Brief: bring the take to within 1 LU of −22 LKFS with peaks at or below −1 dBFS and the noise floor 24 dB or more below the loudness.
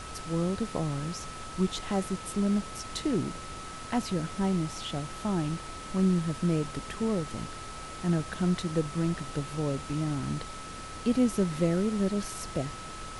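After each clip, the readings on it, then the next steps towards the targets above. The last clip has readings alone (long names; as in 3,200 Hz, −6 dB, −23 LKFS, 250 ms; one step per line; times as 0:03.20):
interfering tone 1,300 Hz; level of the tone −43 dBFS; background noise floor −42 dBFS; target noise floor −55 dBFS; integrated loudness −31.0 LKFS; sample peak −14.0 dBFS; target loudness −22.0 LKFS
→ notch filter 1,300 Hz, Q 30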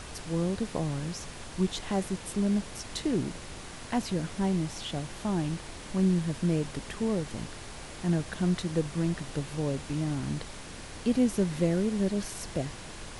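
interfering tone none found; background noise floor −43 dBFS; target noise floor −55 dBFS
→ noise reduction from a noise print 12 dB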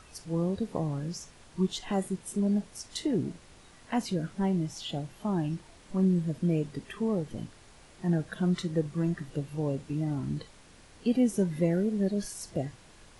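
background noise floor −55 dBFS; integrated loudness −31.0 LKFS; sample peak −14.5 dBFS; target loudness −22.0 LKFS
→ level +9 dB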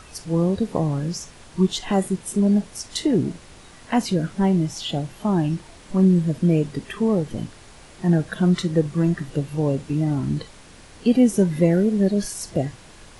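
integrated loudness −22.0 LKFS; sample peak −5.5 dBFS; background noise floor −46 dBFS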